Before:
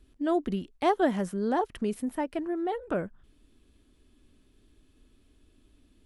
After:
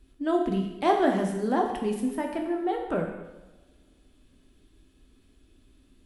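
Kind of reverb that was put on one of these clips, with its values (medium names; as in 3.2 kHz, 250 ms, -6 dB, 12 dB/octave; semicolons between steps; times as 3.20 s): two-slope reverb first 0.97 s, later 2.9 s, from -27 dB, DRR 1 dB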